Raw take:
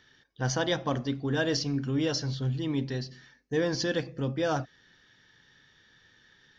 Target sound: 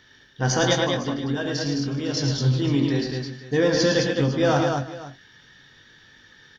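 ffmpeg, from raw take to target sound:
ffmpeg -i in.wav -filter_complex "[0:a]asettb=1/sr,asplit=3[link_01][link_02][link_03];[link_01]atrim=end=0.734[link_04];[link_02]atrim=start=0.73:end=2.17,asetpts=PTS-STARTPTS,afade=type=in:duration=0.004:curve=qsin,afade=type=out:start_time=1.436:duration=0.004:curve=qsin,acompressor=threshold=-32dB:ratio=6[link_05];[link_03]atrim=start=2.166[link_06];[link_04][link_05]acrossfade=duration=0.004:curve1=hsin:curve2=qsin[link_07];[link_07][link_06]acrossfade=duration=0.004:curve1=qsin:curve2=hsin,asplit=2[link_08][link_09];[link_09]adelay=21,volume=-7.5dB[link_10];[link_08][link_10]amix=inputs=2:normalize=0,aecho=1:1:68|110|212|366|505:0.251|0.531|0.631|0.112|0.15,volume=6dB" out.wav

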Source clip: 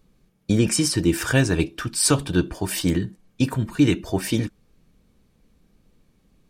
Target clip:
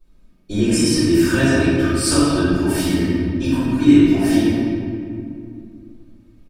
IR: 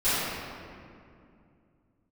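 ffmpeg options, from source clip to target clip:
-filter_complex "[0:a]aecho=1:1:3.2:0.47[link_01];[1:a]atrim=start_sample=2205[link_02];[link_01][link_02]afir=irnorm=-1:irlink=0,volume=-11.5dB"

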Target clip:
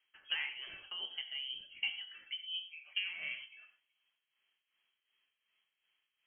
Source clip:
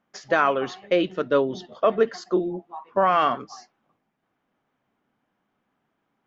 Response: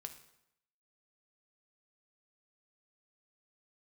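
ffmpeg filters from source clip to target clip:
-filter_complex "[0:a]acompressor=threshold=-30dB:ratio=6,tremolo=f=2.7:d=0.69[link_01];[1:a]atrim=start_sample=2205,atrim=end_sample=4410,asetrate=31311,aresample=44100[link_02];[link_01][link_02]afir=irnorm=-1:irlink=0,lowpass=frequency=2900:width_type=q:width=0.5098,lowpass=frequency=2900:width_type=q:width=0.6013,lowpass=frequency=2900:width_type=q:width=0.9,lowpass=frequency=2900:width_type=q:width=2.563,afreqshift=-3400,volume=-1.5dB"

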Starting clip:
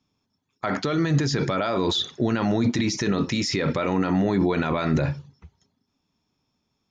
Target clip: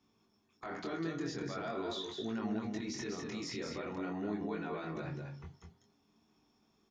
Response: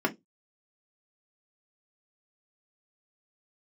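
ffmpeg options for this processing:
-filter_complex "[0:a]acompressor=threshold=-35dB:ratio=6,alimiter=level_in=9.5dB:limit=-24dB:level=0:latency=1:release=34,volume=-9.5dB,flanger=delay=18:depth=6.4:speed=0.43,aecho=1:1:200:0.562,asplit=2[link_01][link_02];[1:a]atrim=start_sample=2205[link_03];[link_02][link_03]afir=irnorm=-1:irlink=0,volume=-13.5dB[link_04];[link_01][link_04]amix=inputs=2:normalize=0,volume=1dB"

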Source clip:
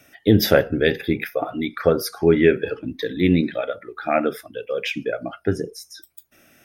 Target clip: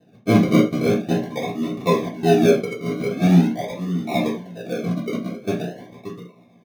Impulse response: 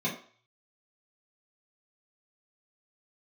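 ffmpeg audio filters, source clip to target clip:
-filter_complex "[0:a]asplit=2[link_01][link_02];[link_02]adelay=578,lowpass=frequency=2100:poles=1,volume=-11dB,asplit=2[link_03][link_04];[link_04]adelay=578,lowpass=frequency=2100:poles=1,volume=0.17[link_05];[link_01][link_03][link_05]amix=inputs=3:normalize=0,acrusher=samples=39:mix=1:aa=0.000001:lfo=1:lforange=23.4:lforate=0.44[link_06];[1:a]atrim=start_sample=2205,afade=type=out:start_time=0.14:duration=0.01,atrim=end_sample=6615[link_07];[link_06][link_07]afir=irnorm=-1:irlink=0,volume=-12dB"

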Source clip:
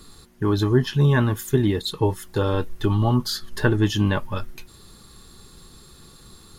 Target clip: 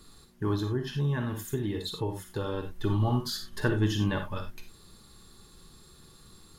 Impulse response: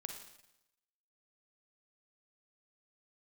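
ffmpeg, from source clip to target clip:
-filter_complex "[1:a]atrim=start_sample=2205,atrim=end_sample=4410[link_01];[0:a][link_01]afir=irnorm=-1:irlink=0,asettb=1/sr,asplit=3[link_02][link_03][link_04];[link_02]atrim=end=0.554[link_05];[link_03]atrim=start=0.55:end=2.84,asetpts=PTS-STARTPTS,afade=type=in:duration=0.004:curve=qsin,afade=type=out:start_time=2.286:duration=0.004:curve=qsin,acompressor=threshold=-27dB:ratio=2[link_06];[link_04]atrim=start=2.836[link_07];[link_05][link_06]acrossfade=duration=0.004:curve1=hsin:curve2=qsin[link_08];[link_08][link_07]acrossfade=duration=0.004:curve1=qsin:curve2=hsin,volume=-3.5dB"

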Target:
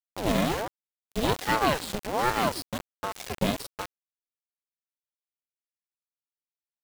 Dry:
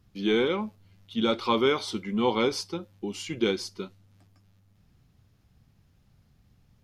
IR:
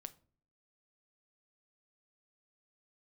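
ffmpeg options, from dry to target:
-af "aresample=11025,aresample=44100,acrusher=bits=3:dc=4:mix=0:aa=0.000001,aeval=exprs='val(0)*sin(2*PI*540*n/s+540*0.65/1.3*sin(2*PI*1.3*n/s))':channel_layout=same,volume=5.5dB"

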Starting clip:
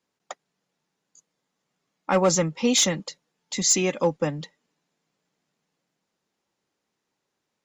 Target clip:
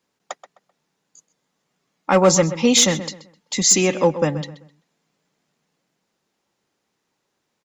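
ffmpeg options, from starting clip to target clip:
ffmpeg -i in.wav -filter_complex "[0:a]asplit=2[link_01][link_02];[link_02]adelay=129,lowpass=frequency=3100:poles=1,volume=-12.5dB,asplit=2[link_03][link_04];[link_04]adelay=129,lowpass=frequency=3100:poles=1,volume=0.31,asplit=2[link_05][link_06];[link_06]adelay=129,lowpass=frequency=3100:poles=1,volume=0.31[link_07];[link_01][link_03][link_05][link_07]amix=inputs=4:normalize=0,volume=5.5dB" out.wav

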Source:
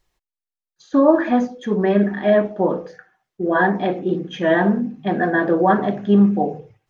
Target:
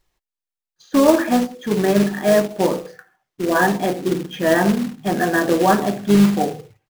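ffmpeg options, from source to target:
ffmpeg -i in.wav -filter_complex "[0:a]acrusher=bits=3:mode=log:mix=0:aa=0.000001,asplit=2[link_01][link_02];[link_02]asetrate=33038,aresample=44100,atempo=1.33484,volume=-17dB[link_03];[link_01][link_03]amix=inputs=2:normalize=0" out.wav

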